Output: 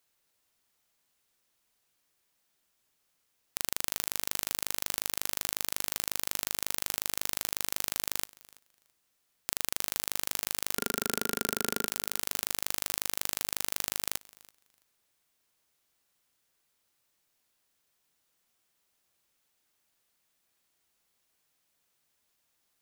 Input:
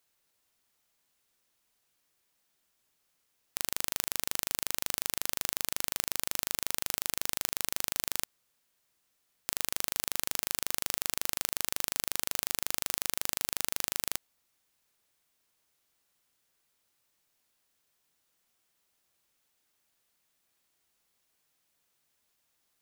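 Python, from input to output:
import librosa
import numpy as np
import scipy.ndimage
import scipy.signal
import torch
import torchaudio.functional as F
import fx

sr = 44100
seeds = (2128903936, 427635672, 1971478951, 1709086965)

p1 = fx.small_body(x, sr, hz=(230.0, 410.0, 1400.0), ring_ms=30, db=16, at=(10.75, 11.87))
y = p1 + fx.echo_feedback(p1, sr, ms=332, feedback_pct=17, wet_db=-23.5, dry=0)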